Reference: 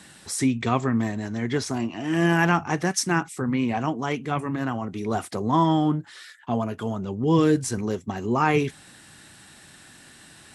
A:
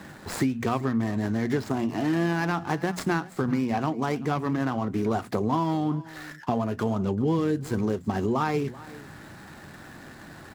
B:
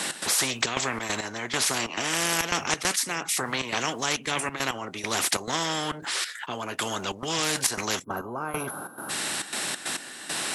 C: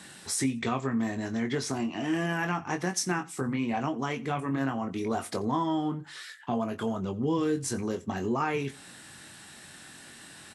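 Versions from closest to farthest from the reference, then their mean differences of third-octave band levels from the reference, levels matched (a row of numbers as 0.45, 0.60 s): C, A, B; 4.0, 6.0, 12.5 dB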